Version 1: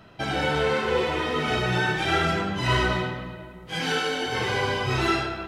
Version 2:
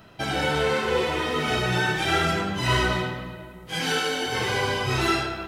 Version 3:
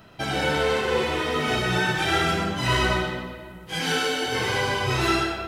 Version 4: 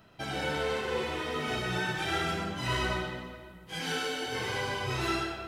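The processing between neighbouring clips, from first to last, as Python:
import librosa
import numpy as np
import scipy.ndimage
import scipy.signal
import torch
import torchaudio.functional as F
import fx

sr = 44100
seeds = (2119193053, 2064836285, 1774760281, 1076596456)

y1 = fx.high_shelf(x, sr, hz=7400.0, db=10.5)
y2 = y1 + 10.0 ** (-7.5 / 20.0) * np.pad(y1, (int(125 * sr / 1000.0), 0))[:len(y1)]
y3 = y2 + 10.0 ** (-23.5 / 20.0) * np.pad(y2, (int(428 * sr / 1000.0), 0))[:len(y2)]
y3 = y3 * librosa.db_to_amplitude(-8.5)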